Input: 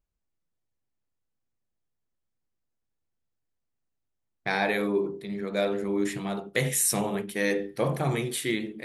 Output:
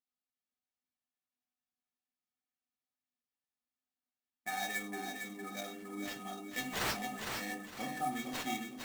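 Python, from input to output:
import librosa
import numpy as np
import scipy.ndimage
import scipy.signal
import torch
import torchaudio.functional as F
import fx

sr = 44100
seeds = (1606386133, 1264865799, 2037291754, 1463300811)

p1 = scipy.signal.sosfilt(scipy.signal.butter(2, 150.0, 'highpass', fs=sr, output='sos'), x)
p2 = fx.low_shelf(p1, sr, hz=470.0, db=-4.5)
p3 = fx.rider(p2, sr, range_db=10, speed_s=0.5)
p4 = p2 + (p3 * 10.0 ** (-0.5 / 20.0))
p5 = fx.comb_fb(p4, sr, f0_hz=250.0, decay_s=0.17, harmonics='odd', damping=0.0, mix_pct=100)
p6 = fx.sample_hold(p5, sr, seeds[0], rate_hz=10000.0, jitter_pct=20)
y = p6 + fx.echo_feedback(p6, sr, ms=457, feedback_pct=30, wet_db=-5.5, dry=0)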